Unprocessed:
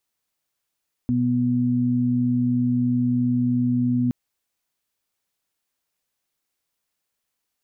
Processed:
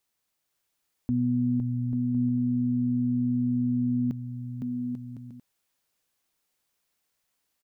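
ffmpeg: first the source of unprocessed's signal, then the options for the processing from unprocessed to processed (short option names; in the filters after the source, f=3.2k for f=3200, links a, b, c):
-f lavfi -i "aevalsrc='0.0631*sin(2*PI*123*t)+0.112*sin(2*PI*246*t)':d=3.02:s=44100"
-filter_complex "[0:a]alimiter=limit=-20dB:level=0:latency=1:release=280,asplit=2[a][b];[b]aecho=0:1:510|841.5|1057|1197|1288:0.631|0.398|0.251|0.158|0.1[c];[a][c]amix=inputs=2:normalize=0"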